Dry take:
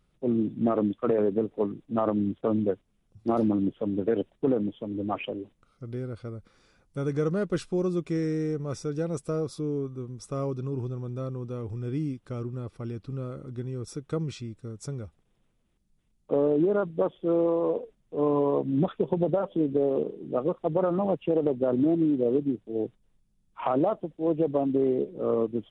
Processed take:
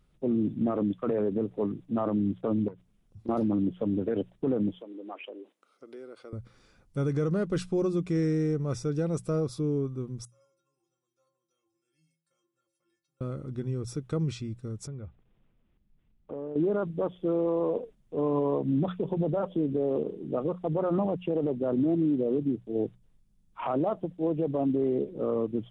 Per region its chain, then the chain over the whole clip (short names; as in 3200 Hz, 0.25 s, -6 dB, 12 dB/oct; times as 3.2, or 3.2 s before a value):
2.68–3.29 self-modulated delay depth 0.22 ms + compressor 12:1, threshold -39 dBFS
4.8–6.33 HPF 330 Hz 24 dB/oct + compressor 2:1, threshold -45 dBFS
10.25–13.21 differentiator + metallic resonator 160 Hz, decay 0.65 s, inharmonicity 0.03
14.87–16.56 LPF 3300 Hz 24 dB/oct + compressor 2.5:1, threshold -41 dBFS
whole clip: tone controls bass +4 dB, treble 0 dB; notches 60/120/180 Hz; limiter -19.5 dBFS